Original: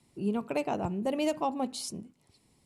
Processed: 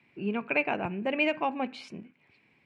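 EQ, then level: Bessel high-pass 150 Hz, order 2; synth low-pass 2400 Hz, resonance Q 6.6; bell 1600 Hz +9.5 dB 0.24 oct; 0.0 dB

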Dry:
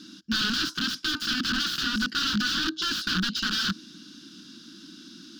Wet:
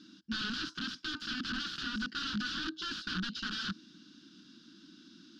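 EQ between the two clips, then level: air absorption 110 m; high shelf 11000 Hz +5.5 dB; -8.5 dB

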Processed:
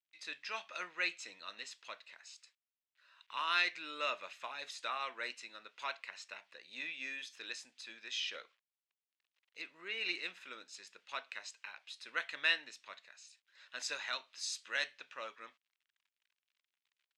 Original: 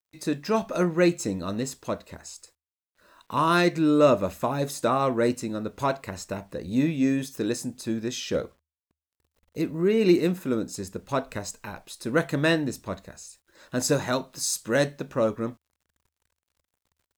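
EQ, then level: resonant high-pass 2700 Hz, resonance Q 1.5; tape spacing loss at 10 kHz 29 dB; +4.0 dB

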